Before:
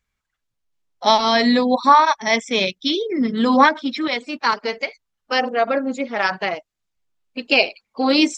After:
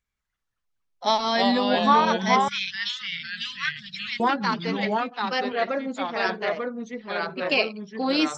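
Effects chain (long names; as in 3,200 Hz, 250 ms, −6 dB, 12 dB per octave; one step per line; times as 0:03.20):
delay with pitch and tempo change per echo 194 ms, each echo −2 semitones, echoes 2
0:02.48–0:04.20: inverse Chebyshev band-stop filter 270–820 Hz, stop band 50 dB
level −7 dB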